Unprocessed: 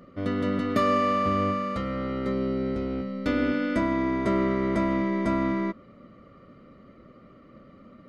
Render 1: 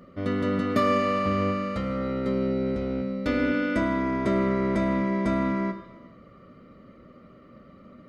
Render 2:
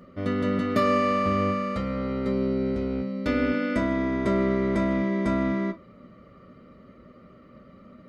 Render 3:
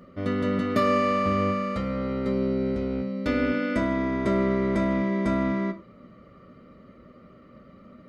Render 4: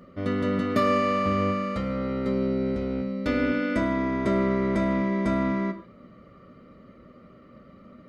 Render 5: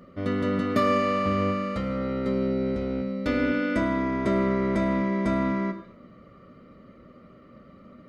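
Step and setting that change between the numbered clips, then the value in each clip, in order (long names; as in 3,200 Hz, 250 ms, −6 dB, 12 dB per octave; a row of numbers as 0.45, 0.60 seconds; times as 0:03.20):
reverb whose tail is shaped and stops, gate: 460, 80, 120, 180, 290 milliseconds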